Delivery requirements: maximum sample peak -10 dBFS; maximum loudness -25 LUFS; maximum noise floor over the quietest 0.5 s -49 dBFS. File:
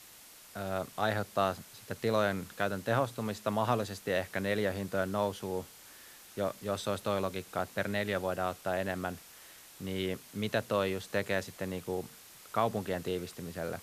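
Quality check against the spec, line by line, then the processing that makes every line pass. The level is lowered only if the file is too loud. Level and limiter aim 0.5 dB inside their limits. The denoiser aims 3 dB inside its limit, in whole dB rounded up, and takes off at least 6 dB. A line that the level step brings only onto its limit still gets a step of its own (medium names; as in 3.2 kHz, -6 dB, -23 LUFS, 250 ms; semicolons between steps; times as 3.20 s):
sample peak -15.5 dBFS: pass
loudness -34.0 LUFS: pass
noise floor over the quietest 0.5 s -54 dBFS: pass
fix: none needed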